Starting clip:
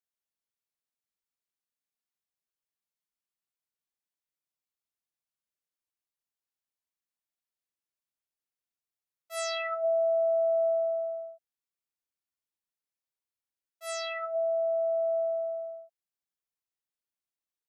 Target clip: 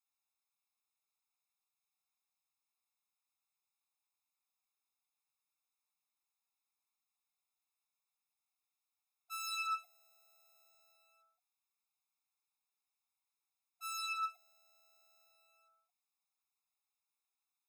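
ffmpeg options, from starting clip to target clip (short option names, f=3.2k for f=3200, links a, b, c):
-af "asoftclip=type=hard:threshold=-35.5dB,afftfilt=real='re*eq(mod(floor(b*sr/1024/690),2),1)':imag='im*eq(mod(floor(b*sr/1024/690),2),1)':win_size=1024:overlap=0.75,volume=4.5dB"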